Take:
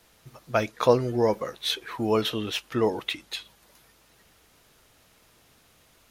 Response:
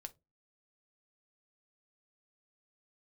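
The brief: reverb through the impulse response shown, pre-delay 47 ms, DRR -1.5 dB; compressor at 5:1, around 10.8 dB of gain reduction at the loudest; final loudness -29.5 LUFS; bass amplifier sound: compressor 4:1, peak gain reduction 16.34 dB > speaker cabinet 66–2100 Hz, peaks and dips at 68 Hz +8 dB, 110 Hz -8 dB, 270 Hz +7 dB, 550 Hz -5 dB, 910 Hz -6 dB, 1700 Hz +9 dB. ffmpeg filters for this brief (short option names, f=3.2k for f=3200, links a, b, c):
-filter_complex "[0:a]acompressor=threshold=-25dB:ratio=5,asplit=2[a][b];[1:a]atrim=start_sample=2205,adelay=47[c];[b][c]afir=irnorm=-1:irlink=0,volume=6.5dB[d];[a][d]amix=inputs=2:normalize=0,acompressor=threshold=-39dB:ratio=4,highpass=f=66:w=0.5412,highpass=f=66:w=1.3066,equalizer=f=68:t=q:w=4:g=8,equalizer=f=110:t=q:w=4:g=-8,equalizer=f=270:t=q:w=4:g=7,equalizer=f=550:t=q:w=4:g=-5,equalizer=f=910:t=q:w=4:g=-6,equalizer=f=1.7k:t=q:w=4:g=9,lowpass=f=2.1k:w=0.5412,lowpass=f=2.1k:w=1.3066,volume=12.5dB"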